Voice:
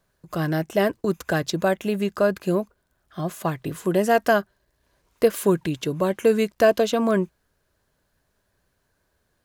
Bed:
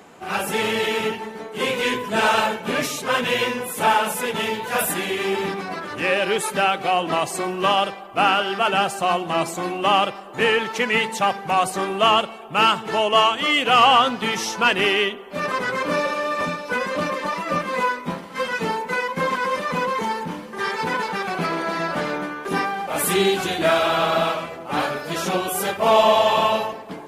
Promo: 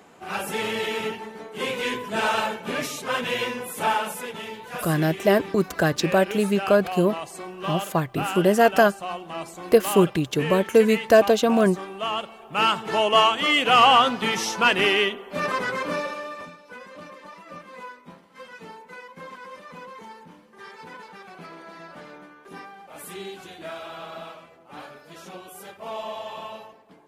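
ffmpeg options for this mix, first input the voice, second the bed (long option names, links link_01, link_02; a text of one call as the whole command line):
ffmpeg -i stem1.wav -i stem2.wav -filter_complex "[0:a]adelay=4500,volume=2dB[link_01];[1:a]volume=5.5dB,afade=type=out:start_time=3.91:duration=0.5:silence=0.473151,afade=type=in:start_time=12.1:duration=0.92:silence=0.298538,afade=type=out:start_time=15.45:duration=1.06:silence=0.141254[link_02];[link_01][link_02]amix=inputs=2:normalize=0" out.wav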